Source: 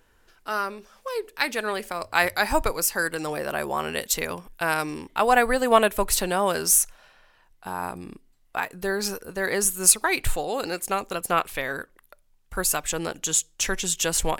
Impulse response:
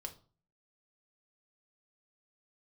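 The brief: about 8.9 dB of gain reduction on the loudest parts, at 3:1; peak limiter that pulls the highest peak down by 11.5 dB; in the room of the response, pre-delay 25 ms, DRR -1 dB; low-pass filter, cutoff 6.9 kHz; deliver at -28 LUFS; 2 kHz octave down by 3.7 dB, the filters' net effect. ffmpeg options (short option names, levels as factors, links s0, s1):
-filter_complex "[0:a]lowpass=6900,equalizer=f=2000:t=o:g=-5,acompressor=threshold=0.0501:ratio=3,alimiter=limit=0.0794:level=0:latency=1,asplit=2[s0][s1];[1:a]atrim=start_sample=2205,adelay=25[s2];[s1][s2]afir=irnorm=-1:irlink=0,volume=1.58[s3];[s0][s3]amix=inputs=2:normalize=0,volume=1.26"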